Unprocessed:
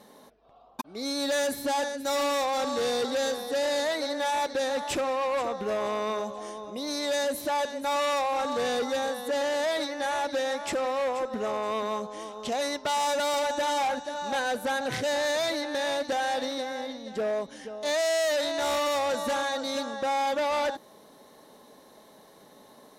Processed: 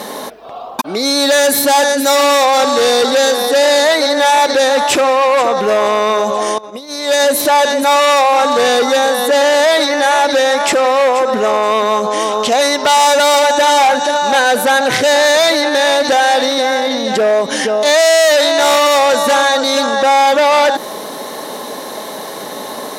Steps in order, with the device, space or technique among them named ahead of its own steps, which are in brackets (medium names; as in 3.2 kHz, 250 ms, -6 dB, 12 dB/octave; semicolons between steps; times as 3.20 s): loud club master (compression, threshold -29 dBFS, peak gain reduction 4.5 dB; hard clipper -23.5 dBFS, distortion -52 dB; loudness maximiser +34 dB); 6.58–7.20 s: gate -6 dBFS, range -19 dB; high-pass 360 Hz 6 dB/octave; 1.49–2.11 s: treble shelf 9.5 kHz +5.5 dB; trim -4.5 dB